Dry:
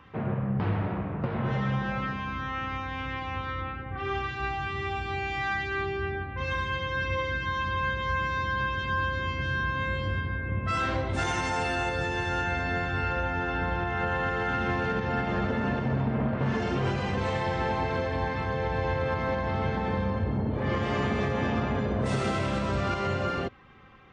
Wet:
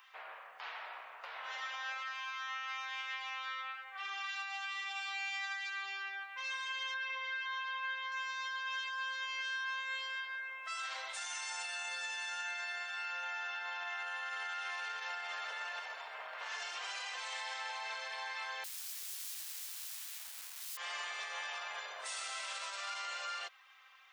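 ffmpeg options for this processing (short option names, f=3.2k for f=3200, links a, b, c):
-filter_complex "[0:a]asettb=1/sr,asplit=3[a][b][c];[a]atrim=end=6.944[d];[b]atrim=start=6.94:end=8.12,asetpts=PTS-STARTPTS,afade=t=in:d=0.004:c=qsin,afade=t=out:st=1.176:d=0.004:c=qsin,lowpass=3.1k[e];[c]atrim=start=8.116[f];[d][e]acrossfade=d=0.004:c1=hsin:c2=qsin[g];[g][f]acrossfade=d=0.004:c1=qsin:c2=hsin,asettb=1/sr,asplit=3[h][i][j];[h]atrim=end=18.644[k];[i]atrim=start=18.64:end=20.77,asetpts=PTS-STARTPTS,afade=t=in:d=0.004:c=qsin,afade=t=out:st=2.126:d=0.004:c=qsin,aeval=exprs='(mod(39.8*val(0)+1,2)-1)/39.8':c=same[l];[j]atrim=start=20.766[m];[k][l]acrossfade=d=0.004:c1=hsin:c2=qsin[n];[n][m]acrossfade=d=0.004:c1=qsin:c2=hsin,highpass=f=660:w=0.5412,highpass=f=660:w=1.3066,aderivative,alimiter=level_in=16.5dB:limit=-24dB:level=0:latency=1:release=58,volume=-16.5dB,volume=8dB"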